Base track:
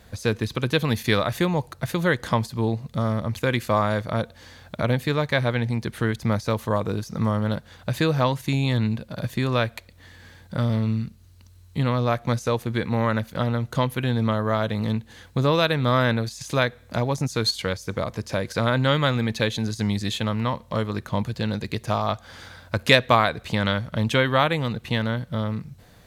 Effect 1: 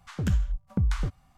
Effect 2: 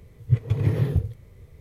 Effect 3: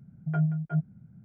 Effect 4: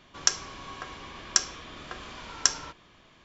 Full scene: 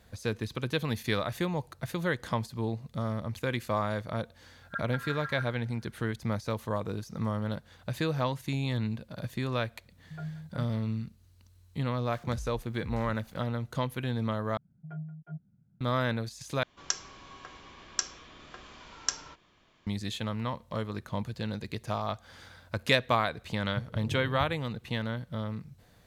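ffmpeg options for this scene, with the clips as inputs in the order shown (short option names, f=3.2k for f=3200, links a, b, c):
-filter_complex "[2:a]asplit=2[a][b];[3:a]asplit=2[c][d];[0:a]volume=-8.5dB[e];[a]aeval=exprs='val(0)*sin(2*PI*1500*n/s)':c=same[f];[c]lowshelf=f=160:g=-6.5[g];[1:a]aeval=exprs='val(0)+0.5*0.0106*sgn(val(0))':c=same[h];[b]lowpass=1k[i];[e]asplit=3[j][k][l];[j]atrim=end=14.574[m];[d]atrim=end=1.24,asetpts=PTS-STARTPTS,volume=-14dB[n];[k]atrim=start=15.806:end=16.634[o];[4:a]atrim=end=3.24,asetpts=PTS-STARTPTS,volume=-7.5dB[p];[l]atrim=start=19.866[q];[f]atrim=end=1.6,asetpts=PTS-STARTPTS,volume=-15dB,afade=t=in:d=0.004:c=hsin,afade=t=out:st=1.596:d=0.004:c=hsin,adelay=4430[r];[g]atrim=end=1.24,asetpts=PTS-STARTPTS,volume=-10dB,afade=t=in:d=0.004:c=hsin,afade=t=out:st=1.236:d=0.004:c=hsin,adelay=9840[s];[h]atrim=end=1.37,asetpts=PTS-STARTPTS,volume=-16.5dB,afade=t=in:d=0.004:c=hsin,afade=t=out:st=1.366:d=0.004:c=hsin,adelay=12050[t];[i]atrim=end=1.6,asetpts=PTS-STARTPTS,volume=-15dB,afade=t=in:d=0.004:c=hsin,afade=t=out:st=1.596:d=0.004:c=hsin,adelay=23450[u];[m][n]acrossfade=d=0.004:c1=hsin:c2=hsin[v];[v][o]acrossfade=d=0.004:c1=hsin:c2=hsin[w];[w][p]acrossfade=d=0.004:c1=hsin:c2=hsin[x];[x][q]acrossfade=d=0.004:c1=hsin:c2=hsin[y];[y][r][s][t][u]amix=inputs=5:normalize=0"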